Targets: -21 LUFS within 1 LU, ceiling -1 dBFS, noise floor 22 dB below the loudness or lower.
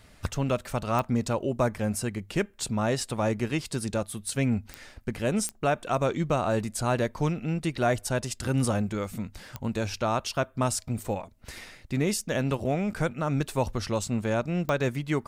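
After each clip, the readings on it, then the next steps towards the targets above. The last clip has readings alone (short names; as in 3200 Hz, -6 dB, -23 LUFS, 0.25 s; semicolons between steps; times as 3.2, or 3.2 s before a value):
clicks 5; loudness -29.0 LUFS; peak -13.0 dBFS; loudness target -21.0 LUFS
-> de-click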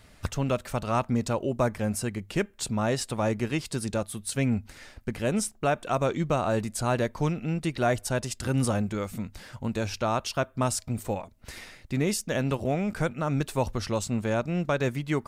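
clicks 0; loudness -29.0 LUFS; peak -13.0 dBFS; loudness target -21.0 LUFS
-> gain +8 dB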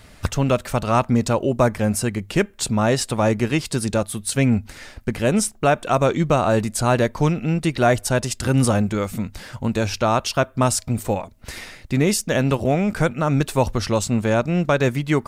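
loudness -21.0 LUFS; peak -5.0 dBFS; noise floor -47 dBFS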